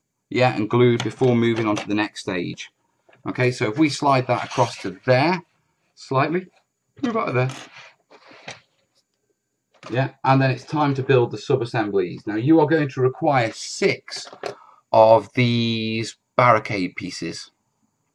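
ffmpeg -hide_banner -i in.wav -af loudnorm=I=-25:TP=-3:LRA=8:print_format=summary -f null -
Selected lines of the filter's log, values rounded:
Input Integrated:    -20.9 LUFS
Input True Peak:      -1.1 dBTP
Input LRA:             4.7 LU
Input Threshold:     -31.9 LUFS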